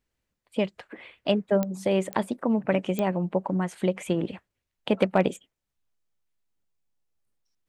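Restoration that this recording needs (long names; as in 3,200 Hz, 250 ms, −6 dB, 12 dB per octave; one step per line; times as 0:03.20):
clipped peaks rebuilt −9.5 dBFS
click removal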